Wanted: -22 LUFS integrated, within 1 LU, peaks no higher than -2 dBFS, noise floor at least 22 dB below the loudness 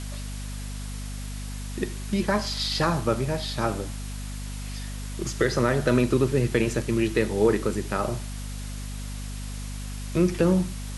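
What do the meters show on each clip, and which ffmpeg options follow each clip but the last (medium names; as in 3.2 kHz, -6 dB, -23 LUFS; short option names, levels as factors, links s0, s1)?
hum 50 Hz; highest harmonic 250 Hz; hum level -31 dBFS; noise floor -34 dBFS; noise floor target -49 dBFS; loudness -27.0 LUFS; peak level -8.0 dBFS; loudness target -22.0 LUFS
-> -af "bandreject=f=50:t=h:w=6,bandreject=f=100:t=h:w=6,bandreject=f=150:t=h:w=6,bandreject=f=200:t=h:w=6,bandreject=f=250:t=h:w=6"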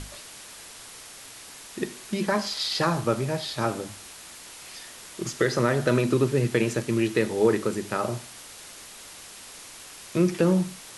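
hum not found; noise floor -45 dBFS; noise floor target -48 dBFS
-> -af "afftdn=nr=6:nf=-45"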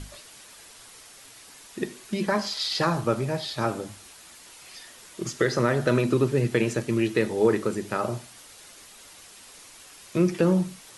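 noise floor -49 dBFS; loudness -25.5 LUFS; peak level -9.0 dBFS; loudness target -22.0 LUFS
-> -af "volume=1.5"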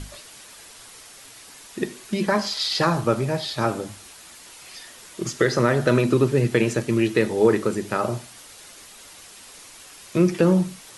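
loudness -22.0 LUFS; peak level -5.5 dBFS; noise floor -45 dBFS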